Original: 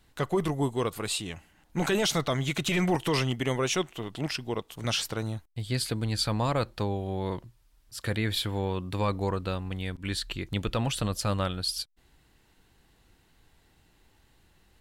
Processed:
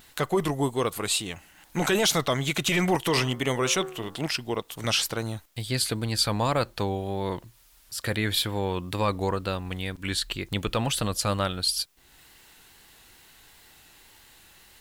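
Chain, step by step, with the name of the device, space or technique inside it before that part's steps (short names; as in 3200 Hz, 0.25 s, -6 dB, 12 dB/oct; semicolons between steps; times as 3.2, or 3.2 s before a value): low shelf 260 Hz -5 dB; 3.04–4.19 de-hum 74.83 Hz, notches 24; high shelf 11000 Hz +7 dB; noise-reduction cassette on a plain deck (mismatched tape noise reduction encoder only; wow and flutter; white noise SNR 39 dB); gain +4 dB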